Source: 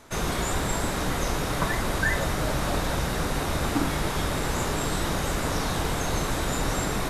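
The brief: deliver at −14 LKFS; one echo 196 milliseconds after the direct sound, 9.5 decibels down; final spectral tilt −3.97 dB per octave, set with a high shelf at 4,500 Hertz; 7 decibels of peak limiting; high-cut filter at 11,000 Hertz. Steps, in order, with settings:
low-pass filter 11,000 Hz
high-shelf EQ 4,500 Hz +8 dB
brickwall limiter −18 dBFS
single-tap delay 196 ms −9.5 dB
level +13.5 dB

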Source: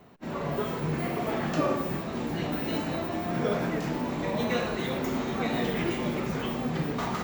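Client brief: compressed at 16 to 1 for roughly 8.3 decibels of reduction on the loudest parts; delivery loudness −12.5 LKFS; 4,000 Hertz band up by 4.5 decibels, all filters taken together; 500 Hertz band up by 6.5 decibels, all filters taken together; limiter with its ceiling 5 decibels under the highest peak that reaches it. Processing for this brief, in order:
parametric band 500 Hz +8 dB
parametric band 4,000 Hz +5.5 dB
downward compressor 16 to 1, threshold −25 dBFS
level +19 dB
brickwall limiter −3.5 dBFS

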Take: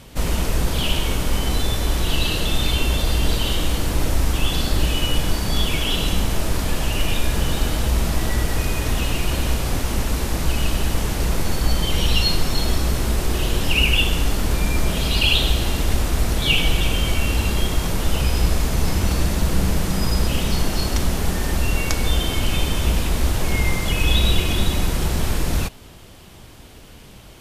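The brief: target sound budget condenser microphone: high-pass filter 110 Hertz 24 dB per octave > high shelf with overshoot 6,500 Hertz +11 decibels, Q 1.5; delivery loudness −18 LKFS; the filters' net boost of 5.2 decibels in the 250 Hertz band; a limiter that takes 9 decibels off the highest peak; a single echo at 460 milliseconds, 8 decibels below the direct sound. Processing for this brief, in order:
parametric band 250 Hz +7 dB
brickwall limiter −11.5 dBFS
high-pass filter 110 Hz 24 dB per octave
high shelf with overshoot 6,500 Hz +11 dB, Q 1.5
single-tap delay 460 ms −8 dB
level +2.5 dB

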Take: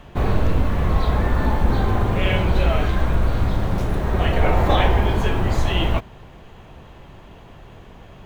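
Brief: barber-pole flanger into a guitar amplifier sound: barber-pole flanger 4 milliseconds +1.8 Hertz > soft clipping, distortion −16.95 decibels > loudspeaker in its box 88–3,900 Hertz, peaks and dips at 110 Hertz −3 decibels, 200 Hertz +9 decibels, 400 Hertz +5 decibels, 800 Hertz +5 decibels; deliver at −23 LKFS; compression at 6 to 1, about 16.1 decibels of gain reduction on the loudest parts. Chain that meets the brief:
downward compressor 6 to 1, threshold −30 dBFS
barber-pole flanger 4 ms +1.8 Hz
soft clipping −29.5 dBFS
loudspeaker in its box 88–3,900 Hz, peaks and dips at 110 Hz −3 dB, 200 Hz +9 dB, 400 Hz +5 dB, 800 Hz +5 dB
level +17.5 dB

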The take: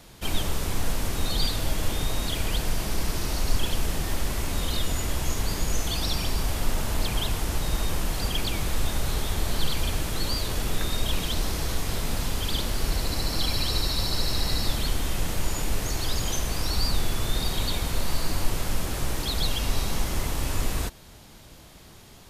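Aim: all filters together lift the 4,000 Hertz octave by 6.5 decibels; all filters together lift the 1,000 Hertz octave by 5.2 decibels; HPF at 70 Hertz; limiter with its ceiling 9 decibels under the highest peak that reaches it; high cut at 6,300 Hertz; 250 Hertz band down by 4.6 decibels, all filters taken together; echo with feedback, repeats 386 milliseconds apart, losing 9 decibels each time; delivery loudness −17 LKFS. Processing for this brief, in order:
high-pass filter 70 Hz
low-pass filter 6,300 Hz
parametric band 250 Hz −7 dB
parametric band 1,000 Hz +6.5 dB
parametric band 4,000 Hz +8 dB
brickwall limiter −20 dBFS
repeating echo 386 ms, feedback 35%, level −9 dB
level +11 dB

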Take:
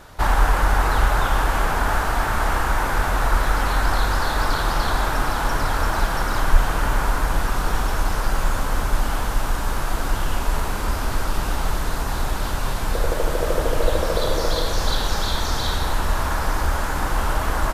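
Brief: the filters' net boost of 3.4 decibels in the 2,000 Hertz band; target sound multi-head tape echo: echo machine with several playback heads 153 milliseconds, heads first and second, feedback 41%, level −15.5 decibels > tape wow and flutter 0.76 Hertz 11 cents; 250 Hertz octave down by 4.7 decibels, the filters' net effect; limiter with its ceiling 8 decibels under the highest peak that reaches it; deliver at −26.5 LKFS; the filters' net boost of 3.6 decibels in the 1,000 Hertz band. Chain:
parametric band 250 Hz −7 dB
parametric band 1,000 Hz +4 dB
parametric band 2,000 Hz +3 dB
brickwall limiter −9.5 dBFS
echo machine with several playback heads 153 ms, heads first and second, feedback 41%, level −15.5 dB
tape wow and flutter 0.76 Hz 11 cents
level −4.5 dB

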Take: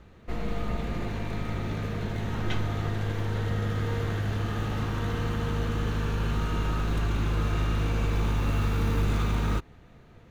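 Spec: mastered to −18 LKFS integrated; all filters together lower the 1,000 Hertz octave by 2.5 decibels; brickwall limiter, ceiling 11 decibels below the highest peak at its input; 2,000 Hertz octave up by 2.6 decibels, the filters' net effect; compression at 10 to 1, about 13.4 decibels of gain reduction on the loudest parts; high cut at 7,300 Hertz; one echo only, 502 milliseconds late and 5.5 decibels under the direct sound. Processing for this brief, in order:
low-pass filter 7,300 Hz
parametric band 1,000 Hz −5 dB
parametric band 2,000 Hz +5 dB
downward compressor 10 to 1, threshold −36 dBFS
brickwall limiter −39 dBFS
single-tap delay 502 ms −5.5 dB
level +28 dB

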